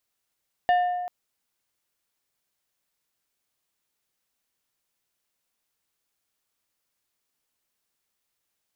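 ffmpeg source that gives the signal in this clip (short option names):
-f lavfi -i "aevalsrc='0.158*pow(10,-3*t/1.62)*sin(2*PI*716*t)+0.0501*pow(10,-3*t/0.853)*sin(2*PI*1790*t)+0.0158*pow(10,-3*t/0.614)*sin(2*PI*2864*t)+0.00501*pow(10,-3*t/0.525)*sin(2*PI*3580*t)+0.00158*pow(10,-3*t/0.437)*sin(2*PI*4654*t)':d=0.39:s=44100"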